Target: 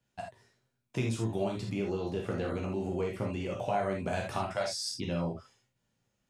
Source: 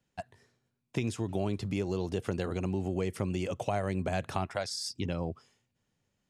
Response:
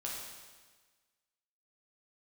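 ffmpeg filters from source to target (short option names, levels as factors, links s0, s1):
-filter_complex "[0:a]asettb=1/sr,asplit=3[s0][s1][s2];[s0]atrim=end=1.734[s3];[s1]atrim=start=1.73:end=4,asetpts=PTS-STARTPTS,afade=t=in:d=0.004:c=qsin,afade=t=out:st=2.266:d=0.004:c=qsin,acrossover=split=3500[s4][s5];[s5]acompressor=threshold=0.00112:ratio=4:attack=1:release=60[s6];[s4][s6]amix=inputs=2:normalize=0[s7];[s2]atrim=start=3.996[s8];[s3][s7]acrossfade=d=0.004:c1=hsin:c2=qsin[s9];[s9][s8]acrossfade=d=0.004:c1=qsin:c2=hsin[s10];[1:a]atrim=start_sample=2205,atrim=end_sample=3969[s11];[s10][s11]afir=irnorm=-1:irlink=0,volume=1.19"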